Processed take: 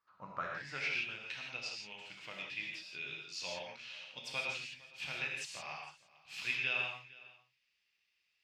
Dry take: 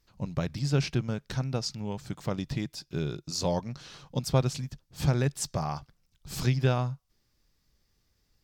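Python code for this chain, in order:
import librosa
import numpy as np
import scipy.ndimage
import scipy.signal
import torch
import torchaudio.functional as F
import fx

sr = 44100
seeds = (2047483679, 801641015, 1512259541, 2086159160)

y = x + 10.0 ** (-21.0 / 20.0) * np.pad(x, (int(458 * sr / 1000.0), 0))[:len(x)]
y = fx.rev_gated(y, sr, seeds[0], gate_ms=190, shape='flat', drr_db=-2.0)
y = fx.filter_sweep_bandpass(y, sr, from_hz=1200.0, to_hz=2600.0, start_s=0.3, end_s=1.05, q=5.7)
y = y * librosa.db_to_amplitude(6.5)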